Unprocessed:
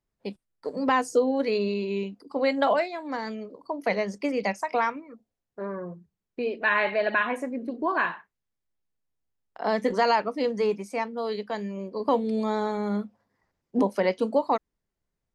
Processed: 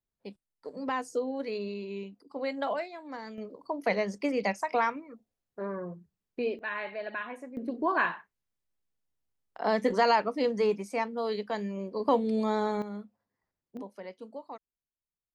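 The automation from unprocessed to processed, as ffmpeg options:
ffmpeg -i in.wav -af "asetnsamples=nb_out_samples=441:pad=0,asendcmd='3.38 volume volume -2dB;6.59 volume volume -12dB;7.57 volume volume -1.5dB;12.82 volume volume -11.5dB;13.77 volume volume -19dB',volume=-9dB" out.wav

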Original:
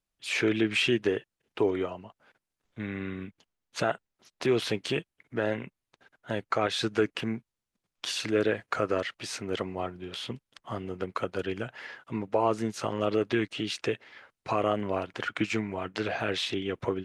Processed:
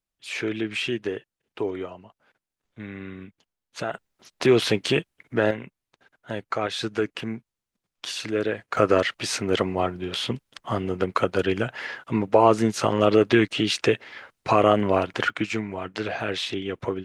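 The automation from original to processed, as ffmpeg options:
ffmpeg -i in.wav -af "asetnsamples=nb_out_samples=441:pad=0,asendcmd='3.94 volume volume 7.5dB;5.51 volume volume 0.5dB;8.77 volume volume 9dB;15.3 volume volume 2dB',volume=-2dB" out.wav

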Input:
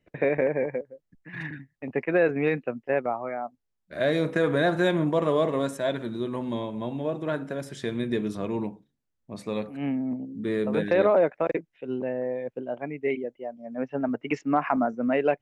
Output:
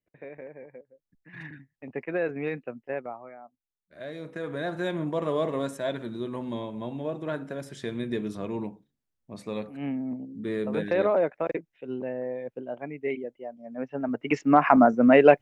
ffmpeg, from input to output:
ffmpeg -i in.wav -af "volume=16dB,afade=type=in:start_time=0.69:duration=0.68:silence=0.251189,afade=type=out:start_time=2.87:duration=0.5:silence=0.398107,afade=type=in:start_time=4.18:duration=1.33:silence=0.266073,afade=type=in:start_time=14.03:duration=0.85:silence=0.281838" out.wav

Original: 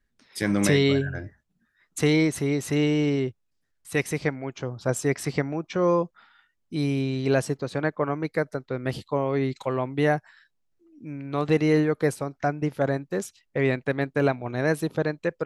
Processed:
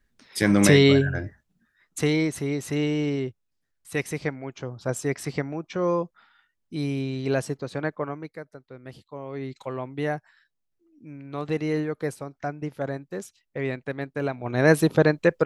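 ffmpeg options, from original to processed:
ffmpeg -i in.wav -af "volume=25dB,afade=type=out:start_time=1.19:duration=0.96:silence=0.446684,afade=type=out:start_time=7.92:duration=0.46:silence=0.281838,afade=type=in:start_time=9.13:duration=0.53:silence=0.398107,afade=type=in:start_time=14.31:duration=0.43:silence=0.237137" out.wav

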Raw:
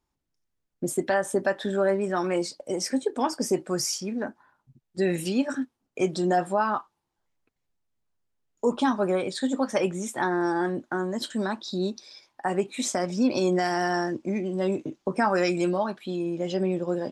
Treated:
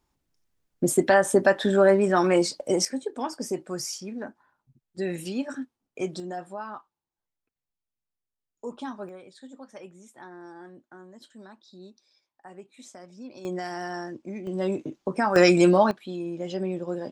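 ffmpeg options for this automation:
ffmpeg -i in.wav -af "asetnsamples=nb_out_samples=441:pad=0,asendcmd='2.85 volume volume -5dB;6.2 volume volume -12dB;9.09 volume volume -19dB;13.45 volume volume -8dB;14.47 volume volume -1dB;15.36 volume volume 7.5dB;15.91 volume volume -3.5dB',volume=5.5dB" out.wav

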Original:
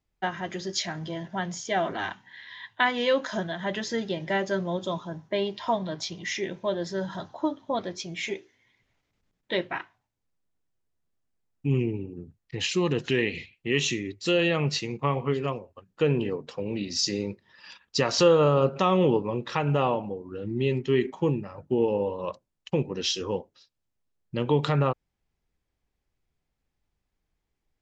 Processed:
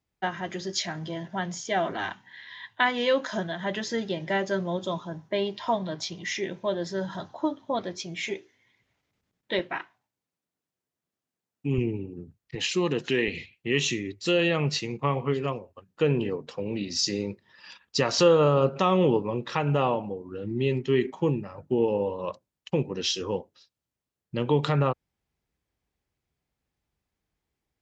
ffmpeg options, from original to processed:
ffmpeg -i in.wav -af "asetnsamples=nb_out_samples=441:pad=0,asendcmd='9.59 highpass f 150;11.78 highpass f 62;12.55 highpass f 160;13.28 highpass f 56',highpass=68" out.wav

